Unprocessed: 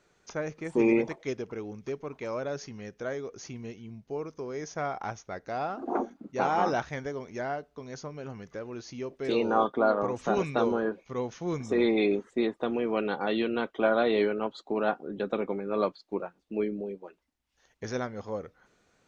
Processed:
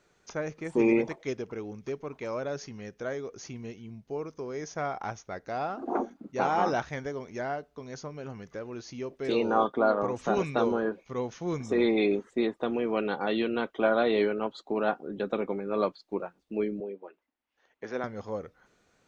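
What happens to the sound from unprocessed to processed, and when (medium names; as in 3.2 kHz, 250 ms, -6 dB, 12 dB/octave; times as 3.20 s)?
16.80–18.04 s: three-band isolator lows -19 dB, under 220 Hz, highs -16 dB, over 3.3 kHz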